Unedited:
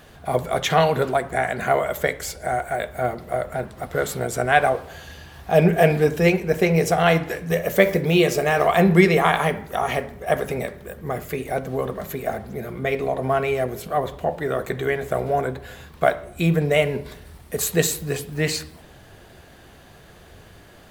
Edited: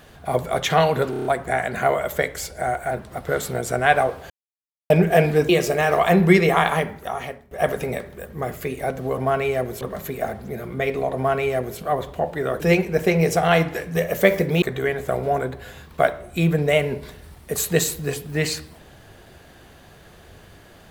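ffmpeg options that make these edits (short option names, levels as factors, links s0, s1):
-filter_complex "[0:a]asplit=15[s0][s1][s2][s3][s4][s5][s6][s7][s8][s9][s10][s11][s12][s13][s14];[s0]atrim=end=1.132[s15];[s1]atrim=start=1.098:end=1.132[s16];[s2]atrim=start=1.098:end=1.132[s17];[s3]atrim=start=1.098:end=1.132[s18];[s4]atrim=start=1.098:end=1.132[s19];[s5]atrim=start=1.098:end=2.762[s20];[s6]atrim=start=3.568:end=4.96,asetpts=PTS-STARTPTS,afade=t=out:st=1.388:d=0.004:c=hsin[s21];[s7]atrim=start=4.96:end=5.56,asetpts=PTS-STARTPTS,volume=0[s22];[s8]atrim=start=5.56:end=6.152,asetpts=PTS-STARTPTS,afade=t=in:d=0.004:c=hsin[s23];[s9]atrim=start=8.168:end=10.19,asetpts=PTS-STARTPTS,afade=t=out:st=1.262:d=0.76:silence=0.133352[s24];[s10]atrim=start=10.19:end=11.862,asetpts=PTS-STARTPTS,afade=t=in:d=0.004:c=hsin:silence=0.133352[s25];[s11]atrim=start=13.208:end=13.842[s26];[s12]atrim=start=11.858:end=14.652[s27];[s13]atrim=start=6.148:end=8.172[s28];[s14]atrim=start=14.648[s29];[s15][s16]acrossfade=d=0.004:c1=hsin:c2=hsin[s30];[s30][s17]acrossfade=d=0.004:c1=hsin:c2=hsin[s31];[s31][s18]acrossfade=d=0.004:c1=hsin:c2=hsin[s32];[s32][s19]acrossfade=d=0.004:c1=hsin:c2=hsin[s33];[s33][s20]acrossfade=d=0.004:c1=hsin:c2=hsin[s34];[s21][s22][s23]concat=n=3:v=0:a=1[s35];[s34][s35]acrossfade=d=0.004:c1=hsin:c2=hsin[s36];[s24][s25]concat=n=2:v=0:a=1[s37];[s36][s37]acrossfade=d=0.004:c1=hsin:c2=hsin[s38];[s38][s26]acrossfade=d=0.004:c1=hsin:c2=hsin[s39];[s39][s27]acrossfade=d=0.004:c1=hsin:c2=hsin[s40];[s40][s28]acrossfade=d=0.004:c1=hsin:c2=hsin[s41];[s41][s29]acrossfade=d=0.004:c1=hsin:c2=hsin"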